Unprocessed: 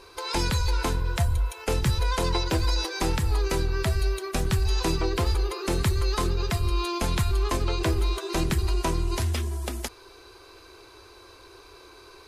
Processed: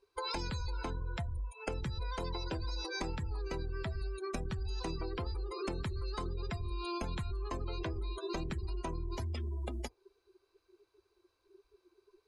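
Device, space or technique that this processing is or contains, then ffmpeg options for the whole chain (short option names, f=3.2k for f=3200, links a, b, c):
serial compression, leveller first: -af "afftdn=nr=31:nf=-33,acompressor=threshold=-26dB:ratio=2.5,acompressor=threshold=-38dB:ratio=5,volume=2dB"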